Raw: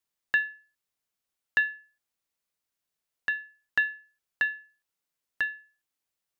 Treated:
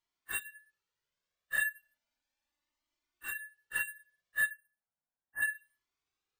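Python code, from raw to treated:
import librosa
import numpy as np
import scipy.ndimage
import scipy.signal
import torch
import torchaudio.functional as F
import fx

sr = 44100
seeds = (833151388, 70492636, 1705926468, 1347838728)

y = fx.phase_scramble(x, sr, seeds[0], window_ms=100)
y = fx.lowpass(y, sr, hz=1600.0, slope=24, at=(4.49, 5.41), fade=0.02)
y = np.repeat(y[::4], 4)[:len(y)]
y = fx.comb(y, sr, ms=3.4, depth=0.59, at=(1.63, 3.3))
y = fx.comb_cascade(y, sr, direction='rising', hz=0.35)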